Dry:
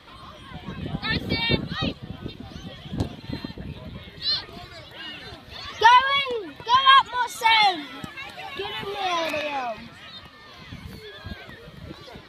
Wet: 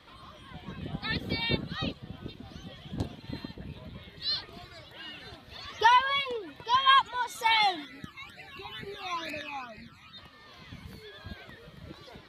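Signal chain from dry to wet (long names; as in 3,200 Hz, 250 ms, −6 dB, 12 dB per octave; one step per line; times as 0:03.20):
0:07.85–0:10.18: all-pass phaser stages 12, 2.2 Hz, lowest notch 520–1,100 Hz
level −6.5 dB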